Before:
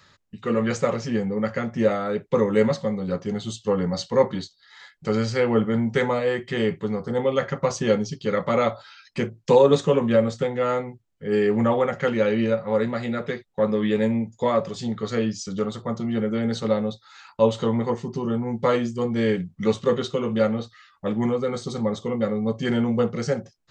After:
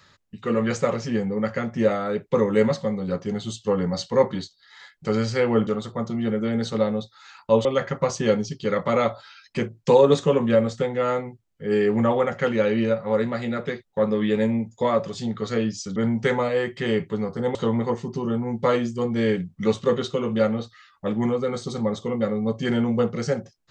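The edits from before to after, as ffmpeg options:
-filter_complex "[0:a]asplit=5[s0][s1][s2][s3][s4];[s0]atrim=end=5.672[s5];[s1]atrim=start=15.568:end=17.552[s6];[s2]atrim=start=7.258:end=15.572[s7];[s3]atrim=start=5.668:end=7.262[s8];[s4]atrim=start=17.548[s9];[s5][s6]acrossfade=d=0.004:c1=hsin:c2=hsin[s10];[s10][s7]acrossfade=d=0.004:c1=hsin:c2=hsin[s11];[s11][s8]acrossfade=d=0.004:c1=hsin:c2=hsin[s12];[s12][s9]acrossfade=d=0.004:c1=hsin:c2=hsin"

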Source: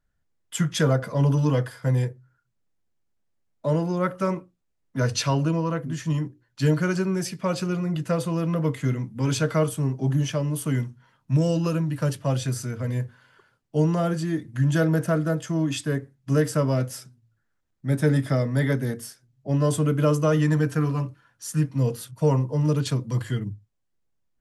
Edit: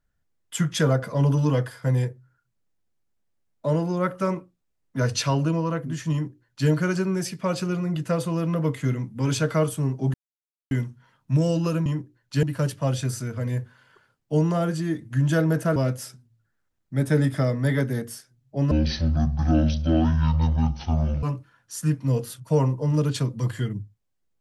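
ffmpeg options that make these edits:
-filter_complex "[0:a]asplit=8[s0][s1][s2][s3][s4][s5][s6][s7];[s0]atrim=end=10.14,asetpts=PTS-STARTPTS,afade=t=out:st=10.136:d=0.004:c=hsin[s8];[s1]atrim=start=10.14:end=10.71,asetpts=PTS-STARTPTS,volume=0[s9];[s2]atrim=start=10.71:end=11.862,asetpts=PTS-STARTPTS,afade=t=in:d=0.004:c=hsin[s10];[s3]atrim=start=6.118:end=6.692[s11];[s4]atrim=start=11.858:end=15.192[s12];[s5]atrim=start=16.678:end=19.634[s13];[s6]atrim=start=19.63:end=20.94,asetpts=PTS-STARTPTS,asetrate=22932,aresample=44100,atrim=end_sample=111098,asetpts=PTS-STARTPTS[s14];[s7]atrim=start=20.936[s15];[s8][s9][s10]concat=n=3:v=0:a=1[s16];[s16][s11]acrossfade=d=0.004:c1=hsin:c2=hsin[s17];[s17][s12]acrossfade=d=0.004:c1=hsin:c2=hsin[s18];[s18][s13]acrossfade=d=0.004:c1=hsin:c2=hsin[s19];[s19][s14]acrossfade=d=0.004:c1=hsin:c2=hsin[s20];[s20][s15]acrossfade=d=0.004:c1=hsin:c2=hsin"

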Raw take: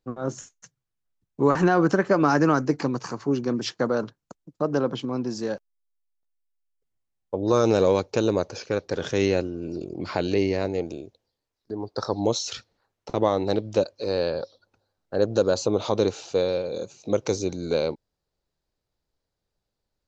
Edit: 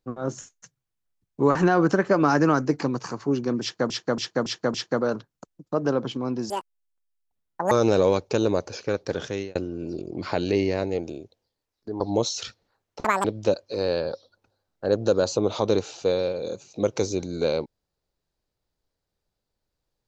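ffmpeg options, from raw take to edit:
-filter_complex "[0:a]asplit=11[s0][s1][s2][s3][s4][s5][s6][s7][s8][s9][s10];[s0]atrim=end=3.902[s11];[s1]atrim=start=3.618:end=3.902[s12];[s2]atrim=start=3.618:end=3.902[s13];[s3]atrim=start=3.618:end=3.902[s14];[s4]atrim=start=3.618:end=5.384[s15];[s5]atrim=start=5.38:end=7.54,asetpts=PTS-STARTPTS,asetrate=78498,aresample=44100[s16];[s6]atrim=start=7.536:end=9.38,asetpts=PTS-STARTPTS,afade=t=out:st=1.424:d=0.42[s17];[s7]atrim=start=9.38:end=11.832,asetpts=PTS-STARTPTS,afade=t=in:d=0.004:c=hsin[s18];[s8]atrim=start=12.098:end=13.144[s19];[s9]atrim=start=13.14:end=13.54,asetpts=PTS-STARTPTS,asetrate=87759,aresample=44100,atrim=end_sample=8864,asetpts=PTS-STARTPTS[s20];[s10]atrim=start=13.536[s21];[s11][s12]acrossfade=d=0.004:c1=hsin:c2=hsin[s22];[s22][s13]acrossfade=d=0.004:c1=hsin:c2=hsin[s23];[s23][s14]acrossfade=d=0.004:c1=hsin:c2=hsin[s24];[s24][s15]acrossfade=d=0.004:c1=hsin:c2=hsin[s25];[s25][s16]acrossfade=d=0.004:c1=hsin:c2=hsin[s26];[s17][s18]concat=n=2:v=0:a=1[s27];[s26][s27]acrossfade=d=0.004:c1=hsin:c2=hsin[s28];[s28][s19]acrossfade=d=0.004:c1=hsin:c2=hsin[s29];[s29][s20]acrossfade=d=0.004:c1=hsin:c2=hsin[s30];[s30][s21]acrossfade=d=0.004:c1=hsin:c2=hsin"

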